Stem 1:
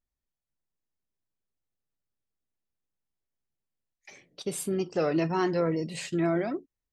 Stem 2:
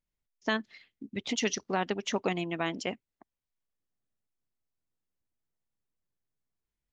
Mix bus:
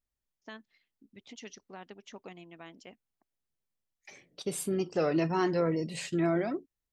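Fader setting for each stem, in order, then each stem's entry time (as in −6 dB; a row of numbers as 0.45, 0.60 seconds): −1.5, −17.0 decibels; 0.00, 0.00 seconds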